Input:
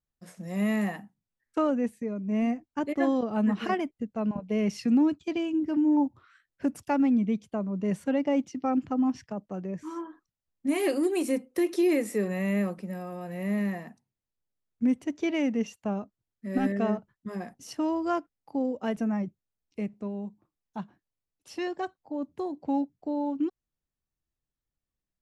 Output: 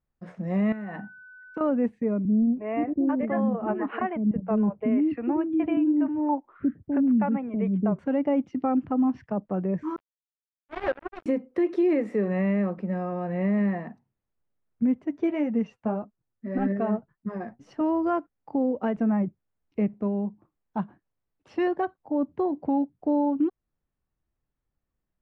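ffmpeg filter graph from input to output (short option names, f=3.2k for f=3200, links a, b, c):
-filter_complex "[0:a]asettb=1/sr,asplit=3[a][b][c];[a]atrim=end=0.724[d];[b]atrim=start=0.72:end=1.61,asetpts=PTS-STARTPTS,afade=t=in:d=0.004:c=qsin,afade=t=out:st=0.886:d=0.004:c=qsin,acompressor=threshold=-36dB:ratio=16:attack=3.2:release=140:knee=1:detection=peak,aeval=exprs='val(0)+0.00282*sin(2*PI*1500*n/s)':c=same[e];[c]atrim=start=1.606[f];[d][e]acrossfade=d=0.004:c1=hsin:c2=qsin[g];[g][f]acrossfade=d=0.004:c1=qsin:c2=hsin,asettb=1/sr,asplit=3[h][i][j];[h]atrim=end=2.254[k];[i]atrim=start=2.25:end=7.99,asetpts=PTS-STARTPTS,afade=t=in:d=0.004:c=qsin,afade=t=out:st=5.736:d=0.004:c=qsin,lowpass=f=2.7k:w=0.5412,lowpass=f=2.7k:w=1.3066,acrossover=split=370[l][m];[m]adelay=320[n];[l][n]amix=inputs=2:normalize=0,atrim=end_sample=253134[o];[j]atrim=start=7.986[p];[k][o]acrossfade=d=0.004:c1=hsin:c2=qsin[q];[q][p]acrossfade=d=0.004:c1=qsin:c2=hsin,asettb=1/sr,asplit=3[r][s][t];[r]atrim=end=9.964[u];[s]atrim=start=9.96:end=11.26,asetpts=PTS-STARTPTS,afade=t=in:d=0.004:c=qsin,afade=t=out:st=1.296:d=0.004:c=qsin,highpass=330,acrossover=split=470 2000:gain=0.0891 1 0.126[v][w][x];[v][w][x]amix=inputs=3:normalize=0,acrusher=bits=4:mix=0:aa=0.5[y];[t]atrim=start=11.256[z];[u][y]acrossfade=d=0.004:c1=hsin:c2=qsin[aa];[aa][z]acrossfade=d=0.004:c1=qsin:c2=hsin,asettb=1/sr,asplit=3[ab][ac][ad];[ab]atrim=end=15.004[ae];[ac]atrim=start=15:end=17.81,asetpts=PTS-STARTPTS,afade=t=in:d=0.004:c=qsin,afade=t=out:st=2.806:d=0.004:c=qsin,equalizer=f=3k:w=1.7:g=-2.5,flanger=delay=4.3:depth=5.1:regen=38:speed=1.8:shape=triangular[af];[ad]atrim=start=17.806[ag];[ae][af]acrossfade=d=0.004:c1=hsin:c2=qsin[ah];[ah][ag]acrossfade=d=0.004:c1=qsin:c2=hsin,lowpass=1.7k,alimiter=limit=-24dB:level=0:latency=1:release=323,volume=7.5dB"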